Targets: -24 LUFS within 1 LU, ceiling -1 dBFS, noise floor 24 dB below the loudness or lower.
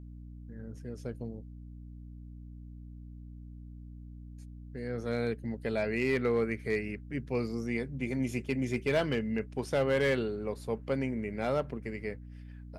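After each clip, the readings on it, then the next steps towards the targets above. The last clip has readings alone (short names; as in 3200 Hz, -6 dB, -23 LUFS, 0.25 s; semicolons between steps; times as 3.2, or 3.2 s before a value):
clipped 0.2%; flat tops at -21.0 dBFS; hum 60 Hz; harmonics up to 300 Hz; hum level -44 dBFS; loudness -33.0 LUFS; peak -21.0 dBFS; loudness target -24.0 LUFS
-> clip repair -21 dBFS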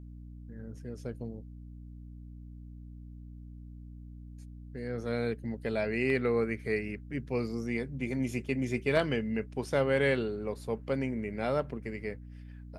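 clipped 0.0%; hum 60 Hz; harmonics up to 300 Hz; hum level -44 dBFS
-> de-hum 60 Hz, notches 5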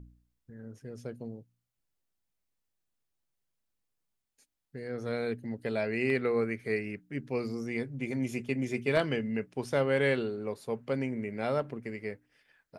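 hum none; loudness -32.5 LUFS; peak -12.0 dBFS; loudness target -24.0 LUFS
-> gain +8.5 dB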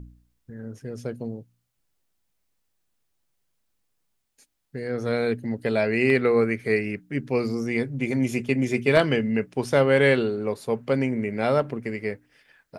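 loudness -24.0 LUFS; peak -3.5 dBFS; noise floor -75 dBFS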